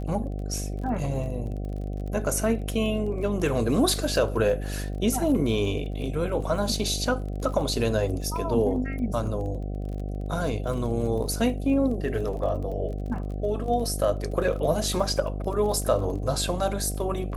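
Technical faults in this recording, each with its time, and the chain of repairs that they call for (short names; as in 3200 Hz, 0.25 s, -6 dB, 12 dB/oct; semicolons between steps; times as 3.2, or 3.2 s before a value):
buzz 50 Hz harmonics 15 -31 dBFS
crackle 27/s -35 dBFS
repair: de-click; de-hum 50 Hz, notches 15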